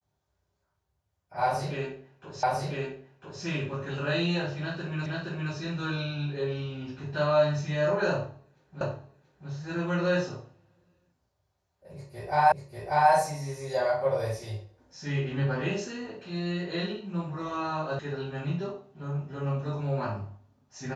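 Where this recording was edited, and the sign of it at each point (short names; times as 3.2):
2.43 repeat of the last 1 s
5.06 repeat of the last 0.47 s
8.81 repeat of the last 0.68 s
12.52 repeat of the last 0.59 s
17.99 sound cut off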